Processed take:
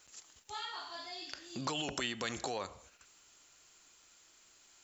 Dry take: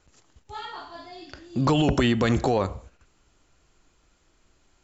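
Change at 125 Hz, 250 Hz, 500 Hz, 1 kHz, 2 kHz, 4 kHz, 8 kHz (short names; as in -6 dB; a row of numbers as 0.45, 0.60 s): -23.5 dB, -20.0 dB, -16.5 dB, -12.0 dB, -9.0 dB, -5.5 dB, n/a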